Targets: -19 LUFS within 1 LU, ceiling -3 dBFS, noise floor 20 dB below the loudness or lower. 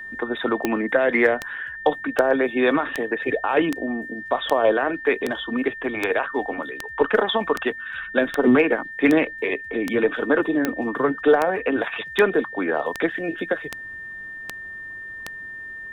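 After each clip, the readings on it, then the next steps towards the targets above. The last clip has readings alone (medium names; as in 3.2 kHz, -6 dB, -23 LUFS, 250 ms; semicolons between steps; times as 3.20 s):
clicks found 20; steady tone 1.8 kHz; tone level -33 dBFS; loudness -22.5 LUFS; peak level -4.0 dBFS; loudness target -19.0 LUFS
-> de-click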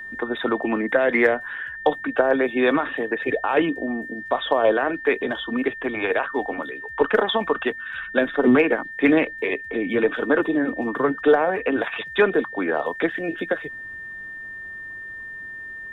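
clicks found 0; steady tone 1.8 kHz; tone level -33 dBFS
-> band-stop 1.8 kHz, Q 30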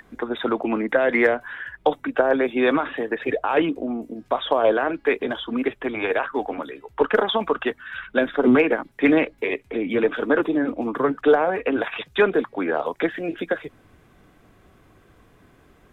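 steady tone not found; loudness -22.5 LUFS; peak level -5.5 dBFS; loudness target -19.0 LUFS
-> trim +3.5 dB; peak limiter -3 dBFS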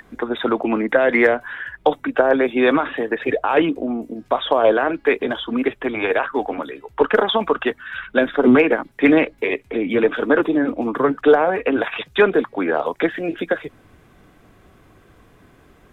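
loudness -19.0 LUFS; peak level -3.0 dBFS; noise floor -53 dBFS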